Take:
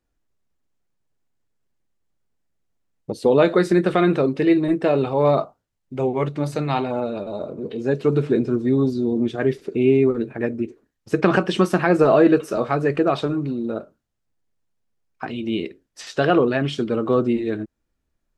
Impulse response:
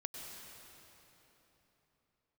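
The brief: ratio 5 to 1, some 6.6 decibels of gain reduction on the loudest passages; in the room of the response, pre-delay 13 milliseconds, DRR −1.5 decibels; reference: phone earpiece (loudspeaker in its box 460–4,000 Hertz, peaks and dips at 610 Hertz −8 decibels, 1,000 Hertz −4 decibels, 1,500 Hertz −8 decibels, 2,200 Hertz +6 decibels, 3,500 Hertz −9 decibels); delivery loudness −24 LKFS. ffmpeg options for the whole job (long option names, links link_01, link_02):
-filter_complex "[0:a]acompressor=threshold=-18dB:ratio=5,asplit=2[link_01][link_02];[1:a]atrim=start_sample=2205,adelay=13[link_03];[link_02][link_03]afir=irnorm=-1:irlink=0,volume=3dB[link_04];[link_01][link_04]amix=inputs=2:normalize=0,highpass=460,equalizer=frequency=610:width_type=q:width=4:gain=-8,equalizer=frequency=1000:width_type=q:width=4:gain=-4,equalizer=frequency=1500:width_type=q:width=4:gain=-8,equalizer=frequency=2200:width_type=q:width=4:gain=6,equalizer=frequency=3500:width_type=q:width=4:gain=-9,lowpass=frequency=4000:width=0.5412,lowpass=frequency=4000:width=1.3066,volume=3.5dB"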